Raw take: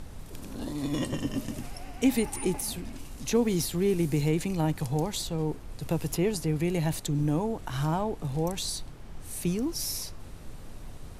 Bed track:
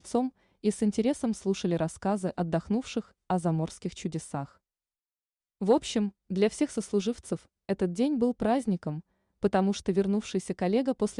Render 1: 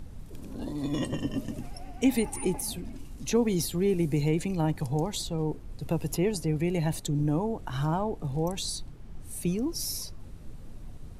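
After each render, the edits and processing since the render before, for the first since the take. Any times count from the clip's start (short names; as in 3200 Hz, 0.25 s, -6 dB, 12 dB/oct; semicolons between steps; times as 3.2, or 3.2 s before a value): denoiser 8 dB, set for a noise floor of -44 dBFS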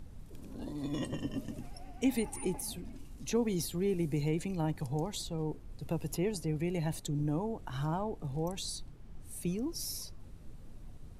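gain -6 dB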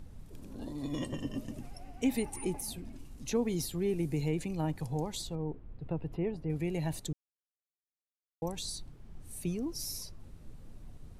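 5.35–6.5 air absorption 480 m; 7.13–8.42 mute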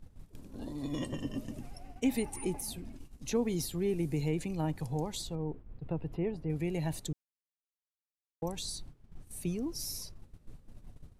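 gate -45 dBFS, range -11 dB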